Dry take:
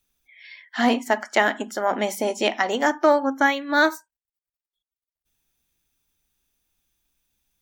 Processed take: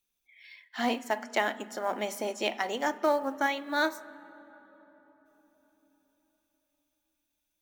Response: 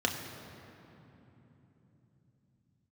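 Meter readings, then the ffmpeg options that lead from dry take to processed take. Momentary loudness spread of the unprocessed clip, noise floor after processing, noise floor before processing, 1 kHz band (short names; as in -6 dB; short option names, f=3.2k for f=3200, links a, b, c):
6 LU, -82 dBFS, under -85 dBFS, -8.0 dB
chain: -filter_complex "[0:a]lowshelf=f=250:g=-8,acrusher=bits=7:mode=log:mix=0:aa=0.000001,asplit=2[a][b];[1:a]atrim=start_sample=2205,asetrate=31752,aresample=44100[c];[b][c]afir=irnorm=-1:irlink=0,volume=-22.5dB[d];[a][d]amix=inputs=2:normalize=0,volume=-8dB"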